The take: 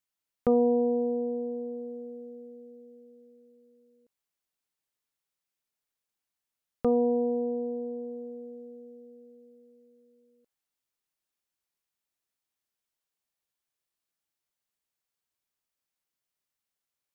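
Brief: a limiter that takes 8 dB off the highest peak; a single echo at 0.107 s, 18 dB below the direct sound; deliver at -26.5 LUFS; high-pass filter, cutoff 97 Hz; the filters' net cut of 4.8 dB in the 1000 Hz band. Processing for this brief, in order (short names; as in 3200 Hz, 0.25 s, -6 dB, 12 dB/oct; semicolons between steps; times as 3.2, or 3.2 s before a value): HPF 97 Hz; bell 1000 Hz -8.5 dB; limiter -23.5 dBFS; echo 0.107 s -18 dB; gain +8 dB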